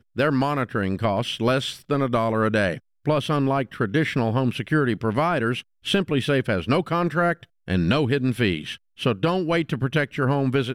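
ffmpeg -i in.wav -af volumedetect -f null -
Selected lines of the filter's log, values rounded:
mean_volume: -22.9 dB
max_volume: -9.3 dB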